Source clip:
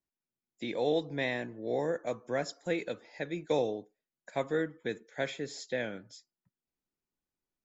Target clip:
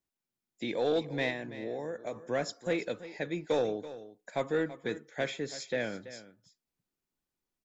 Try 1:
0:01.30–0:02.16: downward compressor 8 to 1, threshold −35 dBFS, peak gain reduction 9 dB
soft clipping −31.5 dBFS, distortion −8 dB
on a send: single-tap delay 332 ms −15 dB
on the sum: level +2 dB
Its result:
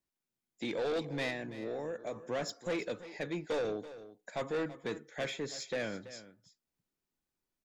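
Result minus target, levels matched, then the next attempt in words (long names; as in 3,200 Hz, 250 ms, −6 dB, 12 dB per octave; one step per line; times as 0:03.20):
soft clipping: distortion +10 dB
0:01.30–0:02.16: downward compressor 8 to 1, threshold −35 dBFS, peak gain reduction 9 dB
soft clipping −21.5 dBFS, distortion −18 dB
on a send: single-tap delay 332 ms −15 dB
on the sum: level +2 dB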